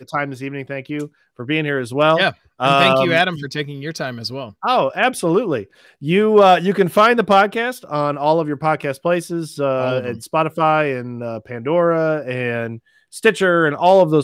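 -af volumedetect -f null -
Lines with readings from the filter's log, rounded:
mean_volume: -17.6 dB
max_volume: -3.1 dB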